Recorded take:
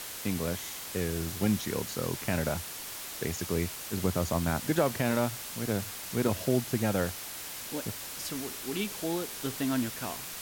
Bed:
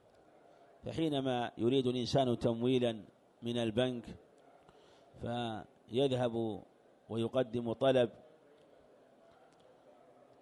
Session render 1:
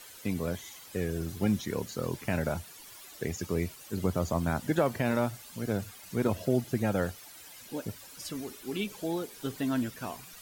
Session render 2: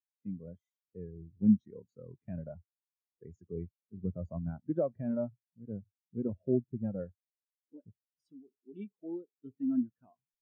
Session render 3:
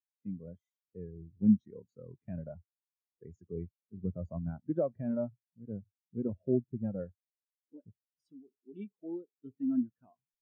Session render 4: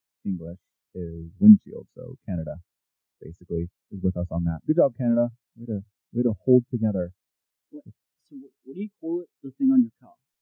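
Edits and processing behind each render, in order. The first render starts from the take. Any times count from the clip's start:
denoiser 13 dB, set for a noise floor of -41 dBFS
spectral expander 2.5:1
nothing audible
gain +11.5 dB

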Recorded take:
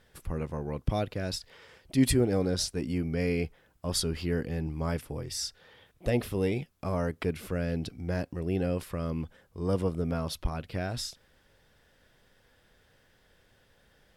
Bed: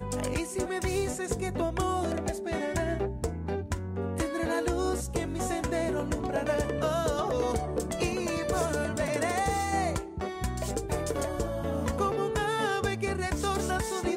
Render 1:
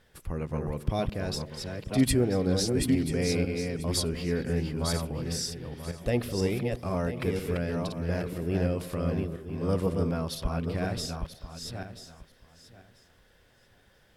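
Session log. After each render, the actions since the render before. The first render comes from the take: regenerating reverse delay 0.493 s, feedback 40%, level -4 dB; delay with a stepping band-pass 0.103 s, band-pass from 170 Hz, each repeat 1.4 oct, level -10 dB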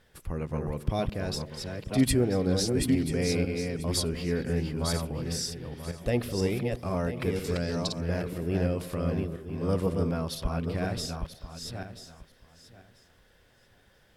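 7.44–8.01 band shelf 5600 Hz +11.5 dB 1.3 oct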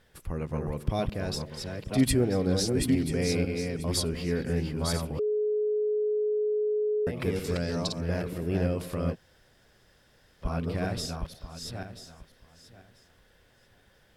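5.19–7.07 bleep 423 Hz -24 dBFS; 9.13–10.44 room tone, crossfade 0.06 s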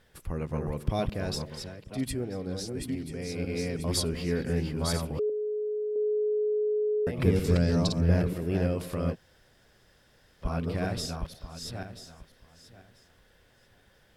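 1.55–3.56 dip -8.5 dB, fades 0.21 s; 5.29–5.96 ripple EQ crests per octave 1.1, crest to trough 12 dB; 7.18–8.33 low shelf 290 Hz +9.5 dB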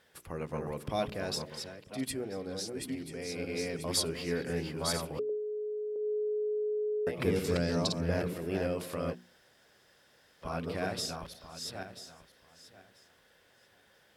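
HPF 320 Hz 6 dB/oct; notches 60/120/180/240/300/360/420 Hz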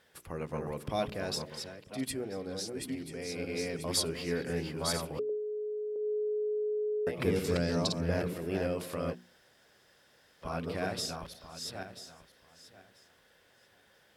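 nothing audible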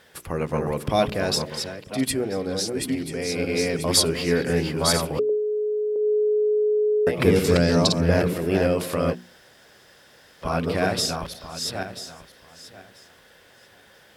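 gain +11.5 dB

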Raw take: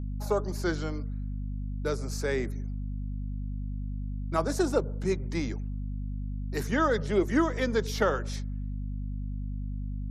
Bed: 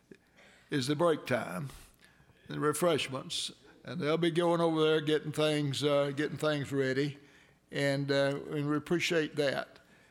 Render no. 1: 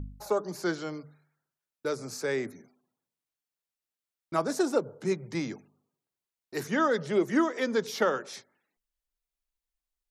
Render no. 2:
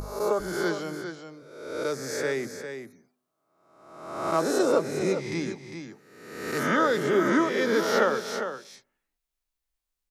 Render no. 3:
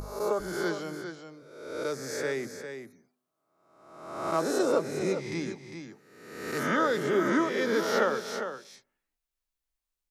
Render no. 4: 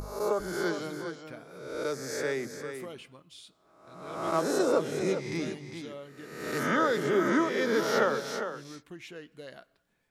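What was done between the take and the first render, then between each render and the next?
de-hum 50 Hz, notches 5
spectral swells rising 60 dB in 1.04 s; echo 0.402 s -8.5 dB
gain -3 dB
add bed -15 dB

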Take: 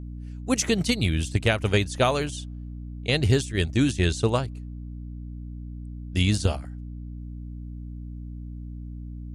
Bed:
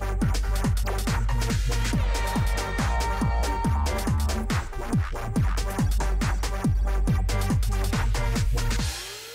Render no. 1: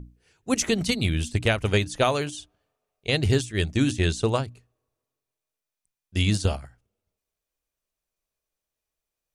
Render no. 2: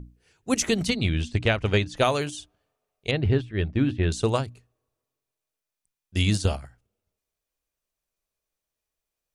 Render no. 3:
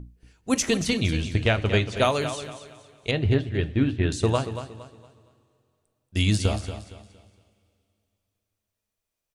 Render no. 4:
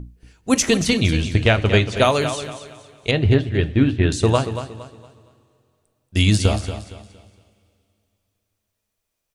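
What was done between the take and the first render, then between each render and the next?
notches 60/120/180/240/300 Hz
0.89–1.97 LPF 4700 Hz; 3.11–4.12 air absorption 420 m
feedback echo 0.231 s, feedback 33%, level -11 dB; two-slope reverb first 0.24 s, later 2.6 s, from -18 dB, DRR 11.5 dB
gain +6 dB; limiter -3 dBFS, peak gain reduction 1.5 dB

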